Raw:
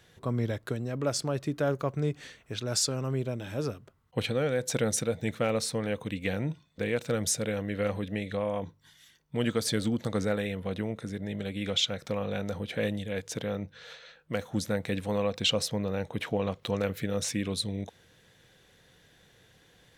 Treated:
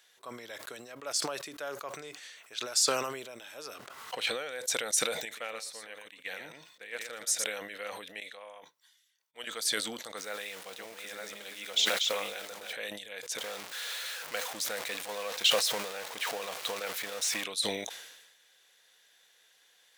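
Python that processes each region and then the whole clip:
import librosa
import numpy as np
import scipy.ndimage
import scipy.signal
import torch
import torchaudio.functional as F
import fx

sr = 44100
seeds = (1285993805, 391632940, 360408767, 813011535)

y = fx.chain(x, sr, fx.high_shelf(hz=8700.0, db=-9.5),
    fx.leveller(passes=1),
    fx.pre_swell(db_per_s=53.0), at=(3.75, 4.31))
y = fx.chain(y, sr, fx.peak_eq(hz=1800.0, db=4.0, octaves=0.35),
    fx.echo_single(ms=117, db=-9.5),
    fx.upward_expand(threshold_db=-37.0, expansion=2.5), at=(5.25, 7.44))
y = fx.chain(y, sr, fx.low_shelf(hz=300.0, db=-8.0),
    fx.upward_expand(threshold_db=-54.0, expansion=2.5), at=(8.2, 9.47))
y = fx.chain(y, sr, fx.reverse_delay(ms=586, wet_db=-3.5),
    fx.sample_gate(floor_db=-42.0), at=(10.17, 12.73))
y = fx.chain(y, sr, fx.zero_step(step_db=-31.0),
    fx.high_shelf(hz=6000.0, db=-4.5),
    fx.transient(attack_db=4, sustain_db=0), at=(13.38, 17.44))
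y = scipy.signal.sosfilt(scipy.signal.butter(2, 720.0, 'highpass', fs=sr, output='sos'), y)
y = fx.high_shelf(y, sr, hz=2700.0, db=9.0)
y = fx.sustainer(y, sr, db_per_s=48.0)
y = F.gain(torch.from_numpy(y), -6.0).numpy()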